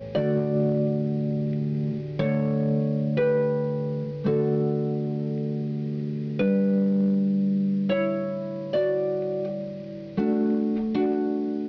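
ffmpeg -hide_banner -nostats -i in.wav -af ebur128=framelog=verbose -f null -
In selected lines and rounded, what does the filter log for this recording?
Integrated loudness:
  I:         -25.5 LUFS
  Threshold: -35.5 LUFS
Loudness range:
  LRA:         2.0 LU
  Threshold: -45.5 LUFS
  LRA low:   -26.6 LUFS
  LRA high:  -24.5 LUFS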